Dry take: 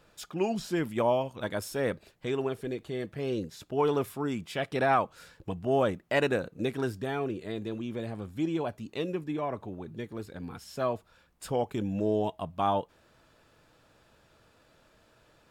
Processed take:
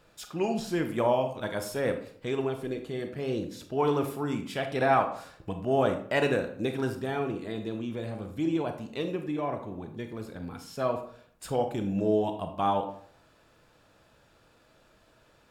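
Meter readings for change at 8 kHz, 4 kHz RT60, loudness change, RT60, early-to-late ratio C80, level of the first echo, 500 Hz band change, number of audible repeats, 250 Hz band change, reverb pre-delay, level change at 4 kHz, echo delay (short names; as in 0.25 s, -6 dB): +0.5 dB, 0.40 s, +1.0 dB, 0.60 s, 12.5 dB, none, +1.0 dB, none, +1.5 dB, 30 ms, +0.5 dB, none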